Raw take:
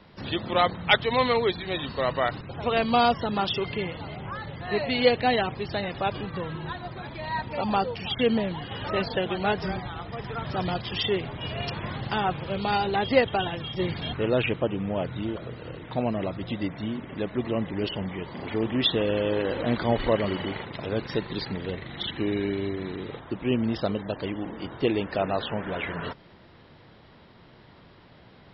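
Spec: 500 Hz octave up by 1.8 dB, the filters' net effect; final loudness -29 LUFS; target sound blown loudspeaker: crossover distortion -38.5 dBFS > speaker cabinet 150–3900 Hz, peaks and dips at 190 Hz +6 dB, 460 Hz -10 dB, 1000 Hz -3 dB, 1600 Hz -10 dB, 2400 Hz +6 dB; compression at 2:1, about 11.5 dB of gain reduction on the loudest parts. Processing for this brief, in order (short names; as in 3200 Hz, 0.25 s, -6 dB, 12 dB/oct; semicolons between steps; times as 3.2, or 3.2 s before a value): bell 500 Hz +8 dB; compressor 2:1, threshold -29 dBFS; crossover distortion -38.5 dBFS; speaker cabinet 150–3900 Hz, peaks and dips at 190 Hz +6 dB, 460 Hz -10 dB, 1000 Hz -3 dB, 1600 Hz -10 dB, 2400 Hz +6 dB; gain +5.5 dB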